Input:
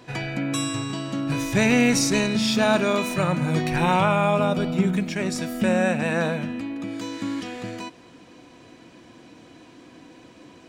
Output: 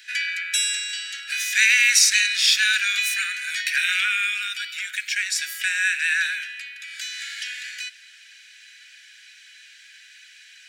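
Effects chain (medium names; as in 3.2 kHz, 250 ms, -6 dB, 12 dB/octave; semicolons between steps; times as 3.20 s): steep high-pass 1.5 kHz 96 dB/octave; trim +9 dB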